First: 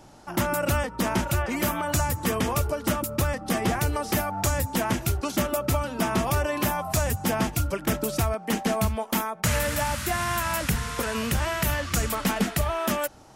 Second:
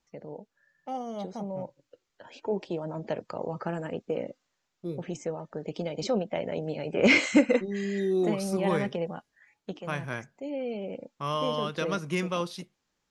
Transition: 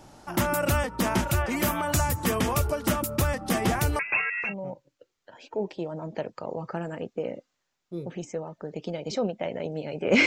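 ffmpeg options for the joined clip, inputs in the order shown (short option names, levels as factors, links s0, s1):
-filter_complex "[0:a]asettb=1/sr,asplit=3[s0][s1][s2];[s0]atrim=end=3.994[s3];[s1]atrim=start=3.99:end=4.54,asetpts=PTS-STARTPTS,afade=t=in:d=0.004:c=qsin,afade=t=out:st=0.546:d=0.004:c=qsin,lowpass=f=2400:t=q:w=0.5098,lowpass=f=2400:t=q:w=0.6013,lowpass=f=2400:t=q:w=0.9,lowpass=f=2400:t=q:w=2.563,afreqshift=-2800[s4];[s2]atrim=start=4.536[s5];[s3][s4]acrossfade=d=0.004:c1=hsin:c2=qsin[s6];[s6][s5]acrossfade=d=0.004:c1=qsin:c2=hsin,apad=whole_dur=10.26,atrim=end=10.26,atrim=end=4.54,asetpts=PTS-STARTPTS[s7];[1:a]atrim=start=1.32:end=7.18,asetpts=PTS-STARTPTS[s8];[s7][s8]acrossfade=d=0.14:c1=tri:c2=tri"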